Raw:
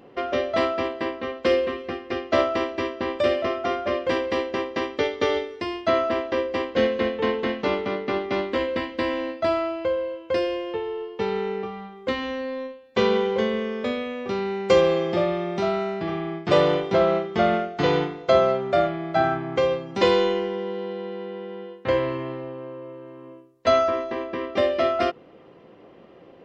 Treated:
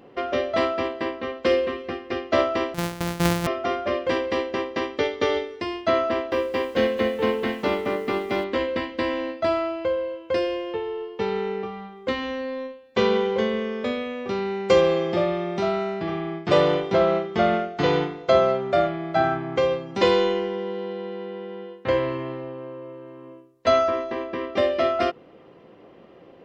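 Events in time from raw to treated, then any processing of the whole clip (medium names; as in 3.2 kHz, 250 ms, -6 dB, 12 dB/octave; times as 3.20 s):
2.74–3.47 s: sorted samples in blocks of 256 samples
6.10–8.44 s: bit-crushed delay 218 ms, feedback 55%, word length 7-bit, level -13 dB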